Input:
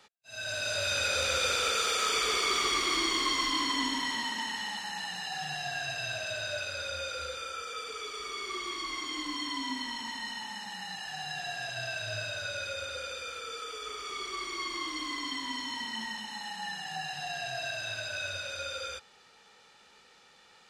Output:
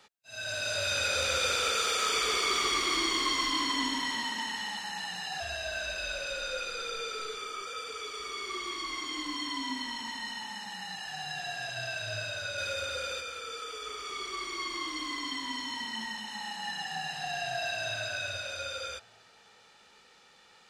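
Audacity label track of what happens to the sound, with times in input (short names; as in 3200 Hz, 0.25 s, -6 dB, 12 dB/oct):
5.400000	7.660000	frequency shift -76 Hz
12.580000	13.210000	sample leveller passes 1
16.200000	18.040000	reverb throw, RT60 2.6 s, DRR 3 dB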